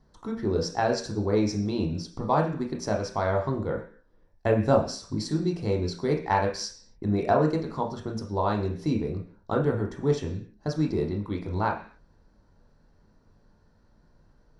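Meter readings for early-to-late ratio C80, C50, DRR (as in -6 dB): 14.0 dB, 9.0 dB, 1.5 dB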